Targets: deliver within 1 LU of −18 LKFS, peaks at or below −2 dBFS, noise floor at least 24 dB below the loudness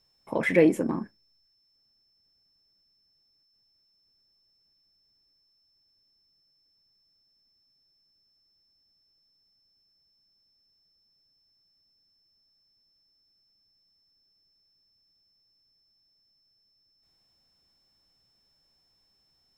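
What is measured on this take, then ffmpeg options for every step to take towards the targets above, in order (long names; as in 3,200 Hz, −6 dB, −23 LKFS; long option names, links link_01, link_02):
interfering tone 5,300 Hz; level of the tone −67 dBFS; integrated loudness −25.0 LKFS; sample peak −6.5 dBFS; target loudness −18.0 LKFS
→ -af "bandreject=frequency=5300:width=30"
-af "volume=7dB,alimiter=limit=-2dB:level=0:latency=1"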